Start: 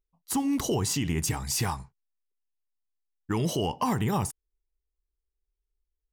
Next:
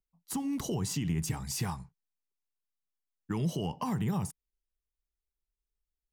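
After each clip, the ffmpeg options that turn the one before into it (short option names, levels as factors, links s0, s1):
-filter_complex "[0:a]equalizer=f=170:t=o:w=0.7:g=9.5,acrossover=split=120[s0][s1];[s1]acompressor=threshold=0.0794:ratio=6[s2];[s0][s2]amix=inputs=2:normalize=0,volume=0.447"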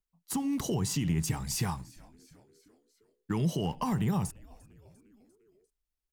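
-filter_complex "[0:a]asplit=2[s0][s1];[s1]aeval=exprs='val(0)*gte(abs(val(0)),0.00708)':c=same,volume=0.299[s2];[s0][s2]amix=inputs=2:normalize=0,asplit=5[s3][s4][s5][s6][s7];[s4]adelay=348,afreqshift=-140,volume=0.0668[s8];[s5]adelay=696,afreqshift=-280,volume=0.038[s9];[s6]adelay=1044,afreqshift=-420,volume=0.0216[s10];[s7]adelay=1392,afreqshift=-560,volume=0.0124[s11];[s3][s8][s9][s10][s11]amix=inputs=5:normalize=0"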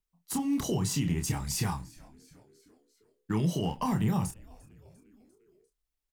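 -filter_complex "[0:a]asplit=2[s0][s1];[s1]adelay=28,volume=0.501[s2];[s0][s2]amix=inputs=2:normalize=0"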